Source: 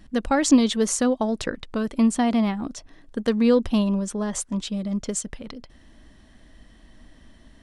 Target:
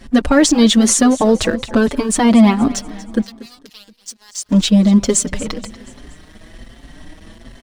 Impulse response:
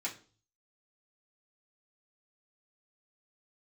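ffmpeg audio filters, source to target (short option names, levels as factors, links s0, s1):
-filter_complex "[0:a]acontrast=35,alimiter=limit=0.2:level=0:latency=1:release=74,acontrast=71,asettb=1/sr,asplit=3[s0][s1][s2];[s0]atrim=end=3.214[s3];[s1]atrim=start=3.21:end=4.44,asetpts=PTS-STARTPTS,afade=t=in:d=0.004:c=qsin,afade=t=out:st=1.226:d=0.004:c=qsin,bandpass=f=4900:t=q:w=3.1:csg=0[s4];[s2]atrim=start=4.436[s5];[s3][s4]acrossfade=d=0.004:c1=hsin:c2=qsin[s6];[s6][s5]acrossfade=d=0.004:c1=qsin:c2=hsin,aeval=exprs='sgn(val(0))*max(abs(val(0))-0.00841,0)':c=same,aecho=1:1:237|474|711|948:0.133|0.064|0.0307|0.0147,asplit=2[s7][s8];[s8]adelay=5.5,afreqshift=1.2[s9];[s7][s9]amix=inputs=2:normalize=1,volume=2.11"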